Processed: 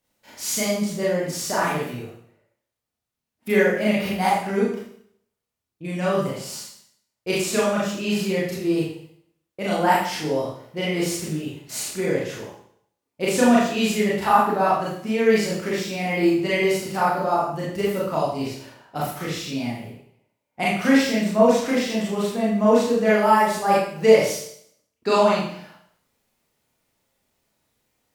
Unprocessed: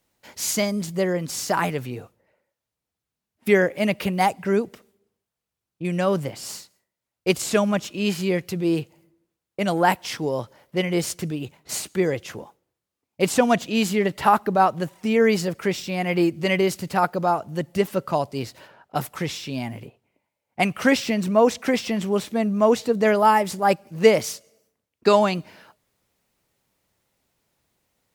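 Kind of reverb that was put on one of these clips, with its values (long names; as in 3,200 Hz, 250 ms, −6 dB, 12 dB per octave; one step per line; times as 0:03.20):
four-comb reverb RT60 0.63 s, combs from 26 ms, DRR −7 dB
level −7 dB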